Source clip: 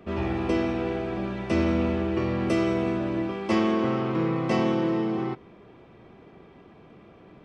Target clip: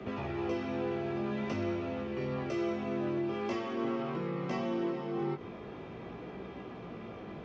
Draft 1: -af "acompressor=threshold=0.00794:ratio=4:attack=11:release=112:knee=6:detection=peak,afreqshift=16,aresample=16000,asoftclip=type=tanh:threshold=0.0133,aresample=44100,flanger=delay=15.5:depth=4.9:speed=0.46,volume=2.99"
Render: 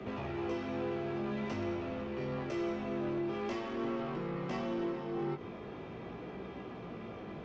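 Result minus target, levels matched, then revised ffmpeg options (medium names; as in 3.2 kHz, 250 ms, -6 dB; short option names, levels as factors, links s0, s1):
saturation: distortion +15 dB
-af "acompressor=threshold=0.00794:ratio=4:attack=11:release=112:knee=6:detection=peak,afreqshift=16,aresample=16000,asoftclip=type=tanh:threshold=0.0422,aresample=44100,flanger=delay=15.5:depth=4.9:speed=0.46,volume=2.99"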